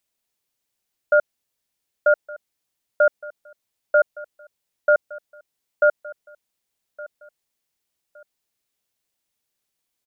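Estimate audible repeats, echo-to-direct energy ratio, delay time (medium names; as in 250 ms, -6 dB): 2, -19.5 dB, 1165 ms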